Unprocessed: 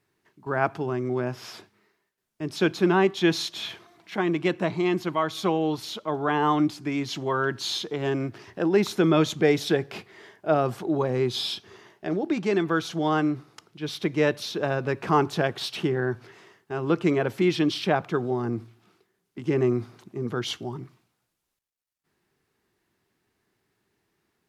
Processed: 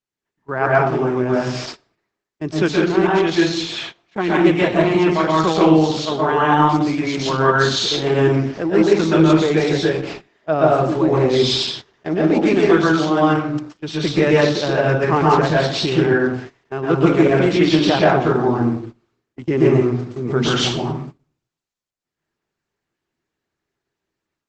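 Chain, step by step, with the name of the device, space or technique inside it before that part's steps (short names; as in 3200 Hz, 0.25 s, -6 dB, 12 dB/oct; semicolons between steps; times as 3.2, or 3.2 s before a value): speakerphone in a meeting room (reverb RT60 0.65 s, pre-delay 0.115 s, DRR -5.5 dB; AGC gain up to 8.5 dB; gate -30 dBFS, range -20 dB; Opus 12 kbps 48000 Hz)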